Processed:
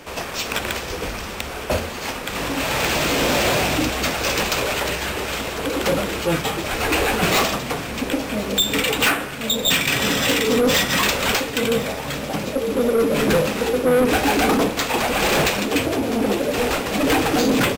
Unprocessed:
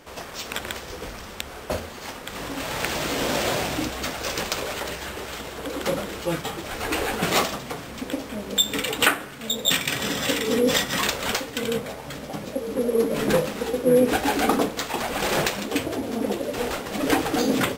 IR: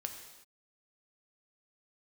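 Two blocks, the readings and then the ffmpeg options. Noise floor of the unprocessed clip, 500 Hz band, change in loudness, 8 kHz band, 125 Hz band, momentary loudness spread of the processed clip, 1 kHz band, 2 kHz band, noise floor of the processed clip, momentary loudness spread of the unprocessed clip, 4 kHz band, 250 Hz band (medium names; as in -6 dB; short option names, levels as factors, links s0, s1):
-39 dBFS, +4.5 dB, +5.0 dB, +4.5 dB, +6.5 dB, 9 LU, +5.0 dB, +6.0 dB, -30 dBFS, 13 LU, +5.0 dB, +5.0 dB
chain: -filter_complex "[0:a]equalizer=f=2500:w=5.1:g=4.5,acrossover=split=120[s0][s1];[s1]asoftclip=type=tanh:threshold=0.0841[s2];[s0][s2]amix=inputs=2:normalize=0,aecho=1:1:1049|2098|3147|4196:0.126|0.0667|0.0354|0.0187,volume=2.51"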